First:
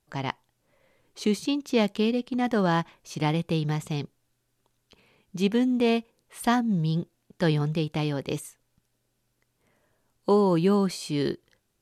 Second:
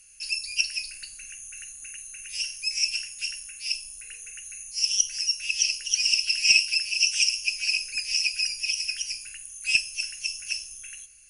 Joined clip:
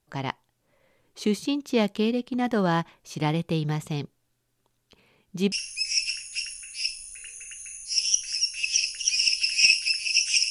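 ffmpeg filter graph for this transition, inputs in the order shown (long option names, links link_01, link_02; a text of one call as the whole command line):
ffmpeg -i cue0.wav -i cue1.wav -filter_complex "[0:a]apad=whole_dur=10.5,atrim=end=10.5,atrim=end=5.522[link_01];[1:a]atrim=start=2.378:end=7.36[link_02];[link_01][link_02]acrossfade=duration=0.004:curve1=hsin:curve2=hsin" out.wav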